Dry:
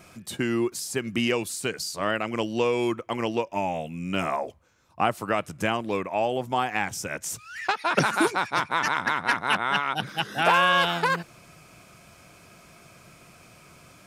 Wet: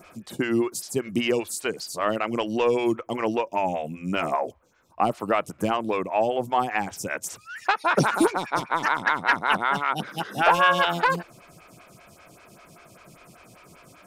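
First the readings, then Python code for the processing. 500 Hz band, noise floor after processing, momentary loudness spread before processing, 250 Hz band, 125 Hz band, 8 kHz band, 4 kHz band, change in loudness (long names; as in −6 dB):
+2.5 dB, −54 dBFS, 8 LU, +2.0 dB, 0.0 dB, −1.0 dB, −2.5 dB, +1.0 dB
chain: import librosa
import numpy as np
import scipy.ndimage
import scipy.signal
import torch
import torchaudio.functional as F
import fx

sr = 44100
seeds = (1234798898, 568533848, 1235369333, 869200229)

p1 = np.clip(x, -10.0 ** (-16.5 / 20.0), 10.0 ** (-16.5 / 20.0))
p2 = x + (p1 * librosa.db_to_amplitude(-4.0))
y = fx.stagger_phaser(p2, sr, hz=5.1)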